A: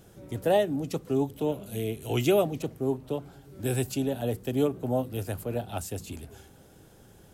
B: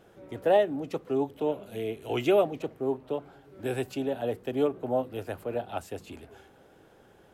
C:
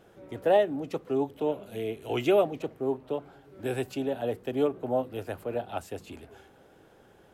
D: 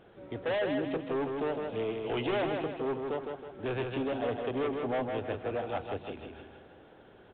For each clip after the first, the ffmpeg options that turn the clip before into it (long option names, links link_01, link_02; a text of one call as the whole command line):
ffmpeg -i in.wav -af "bass=frequency=250:gain=-12,treble=frequency=4000:gain=-15,volume=2dB" out.wav
ffmpeg -i in.wav -af anull out.wav
ffmpeg -i in.wav -af "volume=28.5dB,asoftclip=hard,volume=-28.5dB,aecho=1:1:159|318|477|636|795:0.596|0.262|0.115|0.0507|0.0223" -ar 8000 -c:a pcm_alaw out.wav